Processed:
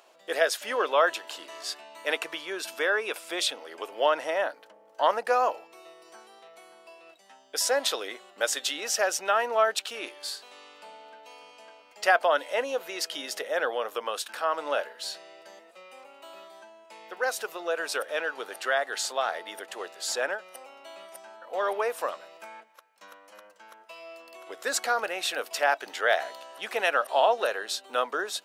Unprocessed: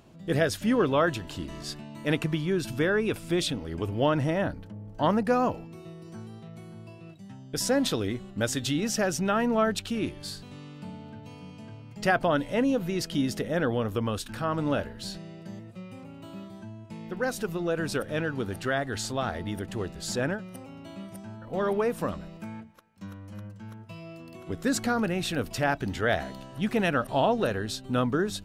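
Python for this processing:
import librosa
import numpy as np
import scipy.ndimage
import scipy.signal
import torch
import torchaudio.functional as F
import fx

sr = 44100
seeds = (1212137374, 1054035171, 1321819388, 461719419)

y = scipy.signal.sosfilt(scipy.signal.butter(4, 530.0, 'highpass', fs=sr, output='sos'), x)
y = F.gain(torch.from_numpy(y), 3.5).numpy()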